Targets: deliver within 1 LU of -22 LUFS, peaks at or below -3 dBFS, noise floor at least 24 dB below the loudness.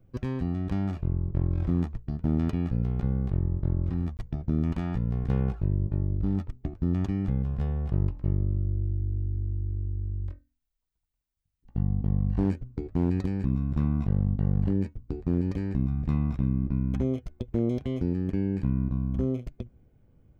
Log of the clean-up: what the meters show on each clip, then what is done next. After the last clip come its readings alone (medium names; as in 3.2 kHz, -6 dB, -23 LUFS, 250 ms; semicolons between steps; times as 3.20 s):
clipped samples 0.6%; clipping level -17.5 dBFS; dropouts 1; longest dropout 19 ms; loudness -29.0 LUFS; peak level -17.5 dBFS; loudness target -22.0 LUFS
-> clip repair -17.5 dBFS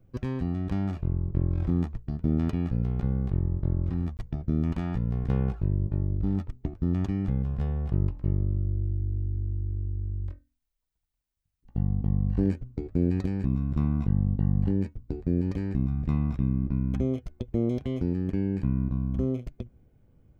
clipped samples 0.0%; dropouts 1; longest dropout 19 ms
-> interpolate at 4.17 s, 19 ms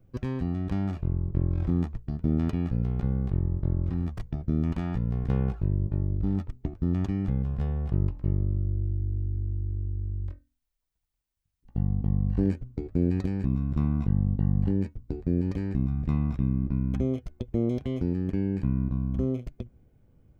dropouts 0; loudness -29.0 LUFS; peak level -13.0 dBFS; loudness target -22.0 LUFS
-> trim +7 dB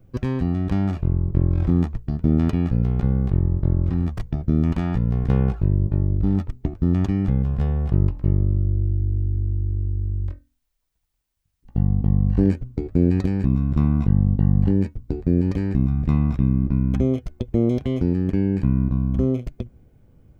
loudness -22.0 LUFS; peak level -6.0 dBFS; noise floor -71 dBFS